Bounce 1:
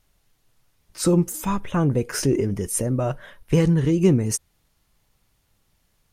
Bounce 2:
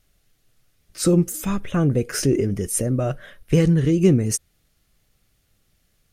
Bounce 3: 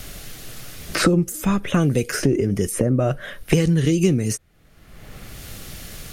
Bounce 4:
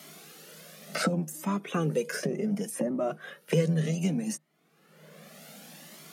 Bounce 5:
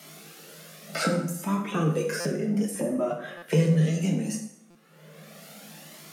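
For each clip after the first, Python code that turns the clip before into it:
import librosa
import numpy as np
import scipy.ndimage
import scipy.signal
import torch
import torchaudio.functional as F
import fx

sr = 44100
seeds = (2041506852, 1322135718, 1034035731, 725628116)

y1 = fx.peak_eq(x, sr, hz=940.0, db=-12.5, octaves=0.36)
y1 = F.gain(torch.from_numpy(y1), 1.5).numpy()
y2 = fx.band_squash(y1, sr, depth_pct=100)
y3 = fx.octave_divider(y2, sr, octaves=1, level_db=-6.0)
y3 = scipy.signal.sosfilt(scipy.signal.cheby1(6, 6, 150.0, 'highpass', fs=sr, output='sos'), y3)
y3 = fx.comb_cascade(y3, sr, direction='rising', hz=0.67)
y4 = fx.rev_plate(y3, sr, seeds[0], rt60_s=0.77, hf_ratio=0.8, predelay_ms=0, drr_db=0.5)
y4 = fx.buffer_glitch(y4, sr, at_s=(2.2, 3.37, 4.7), block=256, repeats=8)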